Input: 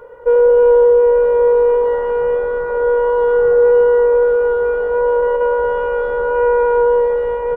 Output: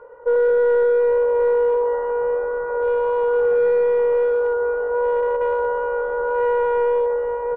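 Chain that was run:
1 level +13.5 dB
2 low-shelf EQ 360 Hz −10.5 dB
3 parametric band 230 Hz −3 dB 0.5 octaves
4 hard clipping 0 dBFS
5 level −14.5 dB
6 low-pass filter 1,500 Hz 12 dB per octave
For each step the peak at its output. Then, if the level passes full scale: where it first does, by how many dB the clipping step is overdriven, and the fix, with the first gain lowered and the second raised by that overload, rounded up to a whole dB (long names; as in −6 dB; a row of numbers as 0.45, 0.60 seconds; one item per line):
+9.5, +5.5, +5.5, 0.0, −14.5, −14.0 dBFS
step 1, 5.5 dB
step 1 +7.5 dB, step 5 −8.5 dB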